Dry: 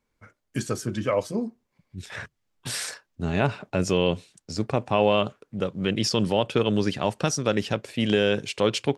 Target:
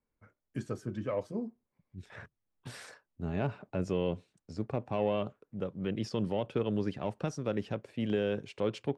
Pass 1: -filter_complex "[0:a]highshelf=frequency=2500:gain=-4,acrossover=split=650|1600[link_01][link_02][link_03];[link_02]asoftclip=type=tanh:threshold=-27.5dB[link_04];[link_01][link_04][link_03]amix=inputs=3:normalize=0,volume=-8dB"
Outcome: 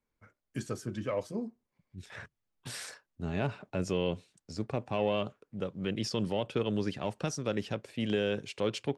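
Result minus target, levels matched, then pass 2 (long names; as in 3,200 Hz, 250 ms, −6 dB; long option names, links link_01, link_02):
4,000 Hz band +6.5 dB
-filter_complex "[0:a]highshelf=frequency=2500:gain=-15,acrossover=split=650|1600[link_01][link_02][link_03];[link_02]asoftclip=type=tanh:threshold=-27.5dB[link_04];[link_01][link_04][link_03]amix=inputs=3:normalize=0,volume=-8dB"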